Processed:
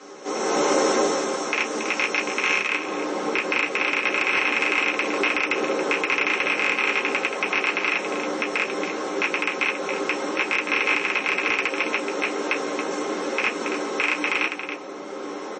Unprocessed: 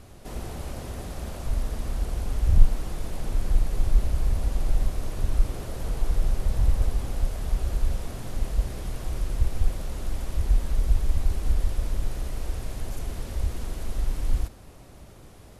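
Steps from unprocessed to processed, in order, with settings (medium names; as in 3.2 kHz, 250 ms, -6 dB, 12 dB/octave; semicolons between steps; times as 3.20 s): rattle on loud lows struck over -23 dBFS, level -6 dBFS; peaking EQ 6.3 kHz +14.5 dB 0.7 oct, from 2.68 s +6 dB; compression 8:1, threshold -20 dBFS, peak gain reduction 14.5 dB; delay 278 ms -14.5 dB; level rider gain up to 10 dB; reverberation RT60 0.15 s, pre-delay 3 ms, DRR -3 dB; dynamic bell 8.4 kHz, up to +5 dB, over -46 dBFS, Q 2.1; peak limiter -4.5 dBFS, peak gain reduction 8.5 dB; high-pass 350 Hz 24 dB/octave; saturation -7 dBFS, distortion -21 dB; MP3 32 kbps 22.05 kHz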